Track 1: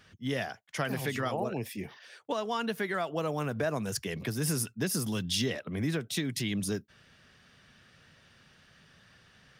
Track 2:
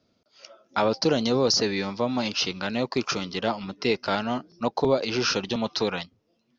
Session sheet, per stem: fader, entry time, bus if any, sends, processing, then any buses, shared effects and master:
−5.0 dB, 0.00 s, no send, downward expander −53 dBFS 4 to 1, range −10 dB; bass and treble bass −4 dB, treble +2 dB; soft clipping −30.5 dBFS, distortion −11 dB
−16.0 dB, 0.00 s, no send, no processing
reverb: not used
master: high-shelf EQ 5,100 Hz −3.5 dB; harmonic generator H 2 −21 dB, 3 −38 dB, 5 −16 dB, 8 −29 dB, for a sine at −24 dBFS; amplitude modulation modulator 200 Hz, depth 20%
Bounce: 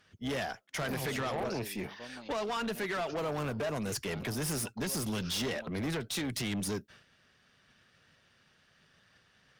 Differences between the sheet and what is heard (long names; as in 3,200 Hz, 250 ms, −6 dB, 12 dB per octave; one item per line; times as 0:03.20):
stem 1 −5.0 dB → +1.0 dB
stem 2 −16.0 dB → −25.5 dB